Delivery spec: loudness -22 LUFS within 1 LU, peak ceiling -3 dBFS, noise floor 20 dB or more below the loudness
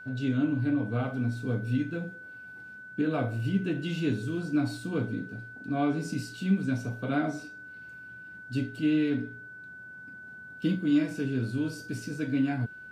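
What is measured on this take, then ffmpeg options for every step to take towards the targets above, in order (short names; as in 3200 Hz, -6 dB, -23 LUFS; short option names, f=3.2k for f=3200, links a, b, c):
steady tone 1500 Hz; tone level -43 dBFS; loudness -30.5 LUFS; peak -15.5 dBFS; loudness target -22.0 LUFS
-> -af "bandreject=f=1.5k:w=30"
-af "volume=8.5dB"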